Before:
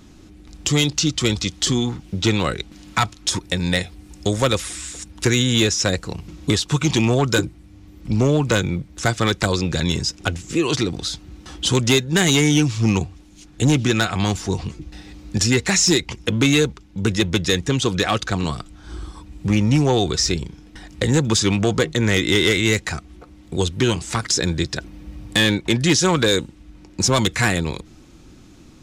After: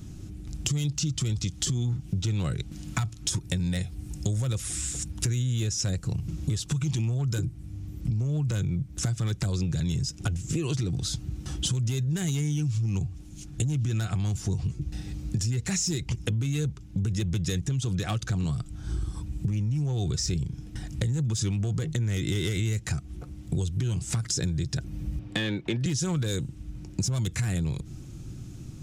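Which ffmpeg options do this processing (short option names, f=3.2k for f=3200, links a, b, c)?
-filter_complex "[0:a]asettb=1/sr,asplit=3[a][b][c];[a]atrim=end=25.194[d];[b]atrim=start=25.19:end=25.86,asetpts=PTS-STARTPTS,afade=t=in:d=0.004:c=qsin,afade=t=out:st=0.666:d=0.004:c=qsin,acrossover=split=230 4200:gain=0.178 1 0.0891[e][f][g];[e][f][g]amix=inputs=3:normalize=0[h];[c]atrim=start=25.856[i];[d][h]acrossfade=d=0.004:c1=hsin:c2=qsin[j];[j][i]acrossfade=d=0.004:c1=qsin:c2=hsin,equalizer=f=125:t=o:w=1:g=11,equalizer=f=250:t=o:w=1:g=-5,equalizer=f=500:t=o:w=1:g=-6,equalizer=f=1k:t=o:w=1:g=-9,equalizer=f=2k:t=o:w=1:g=-7,equalizer=f=4k:t=o:w=1:g=-7,alimiter=limit=-14.5dB:level=0:latency=1:release=43,acompressor=threshold=-29dB:ratio=6,volume=3.5dB"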